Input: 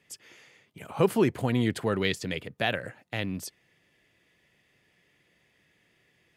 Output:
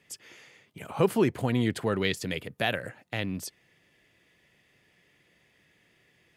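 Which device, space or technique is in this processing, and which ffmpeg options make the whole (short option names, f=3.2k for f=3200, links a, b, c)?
parallel compression: -filter_complex "[0:a]asplit=2[a][b];[b]acompressor=threshold=-39dB:ratio=6,volume=-7.5dB[c];[a][c]amix=inputs=2:normalize=0,asettb=1/sr,asplit=3[d][e][f];[d]atrim=end=2.174[g];[e]atrim=start=2.17:end=2.89,asetpts=PTS-STARTPTS,afade=t=in:d=0.004:c=qsin,afade=t=out:st=0.716:d=0.004:c=qsin,equalizer=f=12k:w=1.1:g=7.5[h];[f]atrim=start=2.886[i];[g][h]acrossfade=d=0.004:c1=hsin:c2=qsin[j];[j][i]acrossfade=d=0.004:c1=qsin:c2=hsin,volume=-1dB"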